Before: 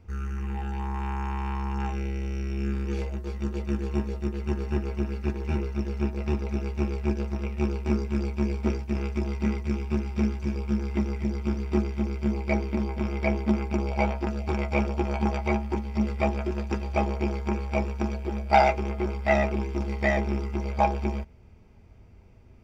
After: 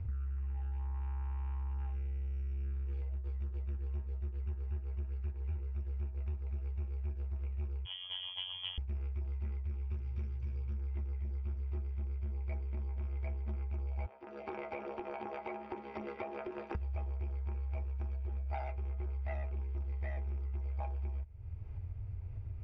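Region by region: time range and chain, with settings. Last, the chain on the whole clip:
7.85–8.78 robotiser 91.6 Hz + inverted band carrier 3300 Hz
9.9–10.72 high shelf 4500 Hz +10 dB + buzz 120 Hz, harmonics 4, -43 dBFS + notch 720 Hz, Q 6.6
14.06–16.75 HPF 260 Hz 24 dB/oct + high shelf 4000 Hz -10.5 dB + compressor 3:1, threshold -32 dBFS
whole clip: LPF 2900 Hz 12 dB/oct; resonant low shelf 140 Hz +11 dB, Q 3; compressor, threshold -40 dBFS; gain +1.5 dB

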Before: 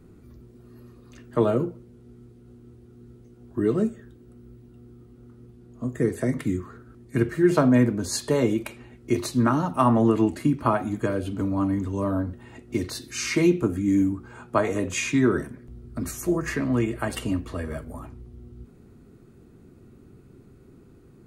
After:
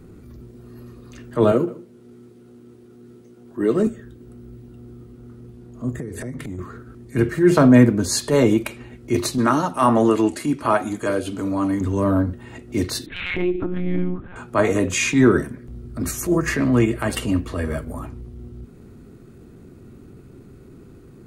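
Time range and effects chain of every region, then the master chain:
1.52–3.87 Bessel high-pass 230 Hz + echo 0.153 s -18 dB
5.91–6.59 low shelf 160 Hz +8.5 dB + compressor 16:1, threshold -33 dBFS
9.38–11.81 LPF 12000 Hz 24 dB/oct + tone controls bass -10 dB, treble +5 dB
13.06–14.36 compressor 3:1, threshold -26 dBFS + monotone LPC vocoder at 8 kHz 180 Hz
whole clip: bell 820 Hz -2 dB; transient shaper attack -8 dB, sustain -2 dB; gain +8 dB

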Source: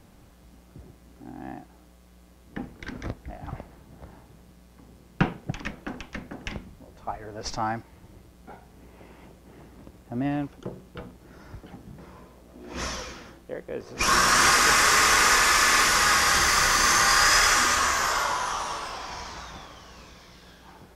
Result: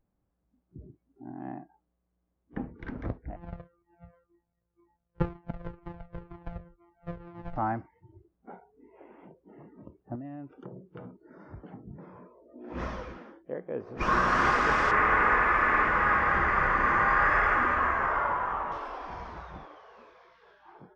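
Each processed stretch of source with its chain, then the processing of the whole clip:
3.36–7.56 sample sorter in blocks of 256 samples + high shelf 3600 Hz -10 dB + cascading flanger falling 2 Hz
10.15–11.83 HPF 57 Hz + compressor 8:1, threshold -37 dBFS
14.91–18.72 resonant high shelf 3000 Hz -12 dB, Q 1.5 + notch 5800 Hz, Q 26
whole clip: Bessel low-pass 1200 Hz, order 2; spectral noise reduction 25 dB

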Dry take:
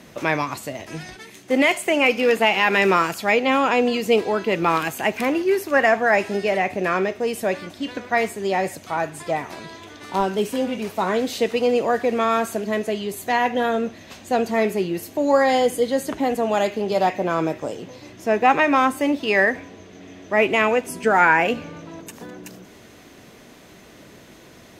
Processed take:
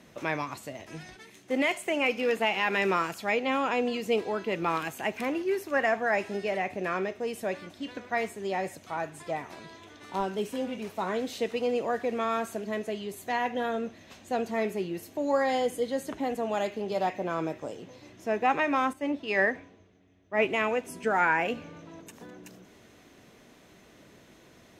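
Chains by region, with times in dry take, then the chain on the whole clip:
18.93–20.45 high shelf 8700 Hz -9.5 dB + three-band expander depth 70%
whole clip: high shelf 11000 Hz -4.5 dB; notch 4700 Hz, Q 22; gain -9 dB

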